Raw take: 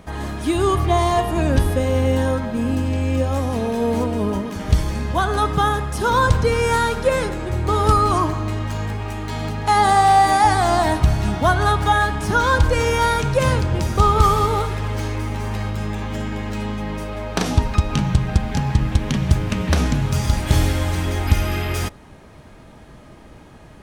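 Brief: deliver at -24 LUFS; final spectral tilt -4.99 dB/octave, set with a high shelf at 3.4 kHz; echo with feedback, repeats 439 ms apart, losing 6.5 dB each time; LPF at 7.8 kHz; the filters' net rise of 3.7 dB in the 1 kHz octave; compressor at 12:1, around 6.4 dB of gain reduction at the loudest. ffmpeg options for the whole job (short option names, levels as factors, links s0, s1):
-af "lowpass=7800,equalizer=f=1000:t=o:g=4,highshelf=f=3400:g=8.5,acompressor=threshold=0.2:ratio=12,aecho=1:1:439|878|1317|1756|2195|2634:0.473|0.222|0.105|0.0491|0.0231|0.0109,volume=0.631"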